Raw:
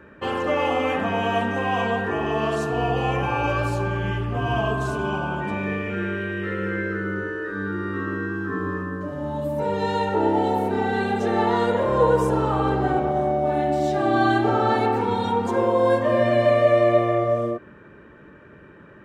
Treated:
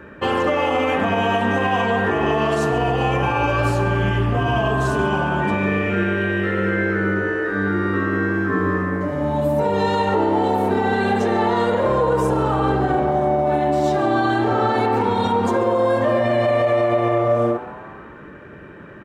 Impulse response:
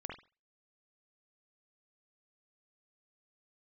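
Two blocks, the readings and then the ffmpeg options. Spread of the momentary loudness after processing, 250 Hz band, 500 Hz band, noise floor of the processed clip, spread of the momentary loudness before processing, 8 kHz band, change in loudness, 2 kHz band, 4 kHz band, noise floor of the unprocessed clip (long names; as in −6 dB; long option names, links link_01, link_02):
3 LU, +4.0 dB, +2.5 dB, −39 dBFS, 9 LU, can't be measured, +3.5 dB, +5.0 dB, +4.0 dB, −47 dBFS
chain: -filter_complex "[0:a]alimiter=limit=-17.5dB:level=0:latency=1:release=75,asplit=7[link_01][link_02][link_03][link_04][link_05][link_06][link_07];[link_02]adelay=139,afreqshift=140,volume=-18dB[link_08];[link_03]adelay=278,afreqshift=280,volume=-21.9dB[link_09];[link_04]adelay=417,afreqshift=420,volume=-25.8dB[link_10];[link_05]adelay=556,afreqshift=560,volume=-29.6dB[link_11];[link_06]adelay=695,afreqshift=700,volume=-33.5dB[link_12];[link_07]adelay=834,afreqshift=840,volume=-37.4dB[link_13];[link_01][link_08][link_09][link_10][link_11][link_12][link_13]amix=inputs=7:normalize=0,volume=7dB"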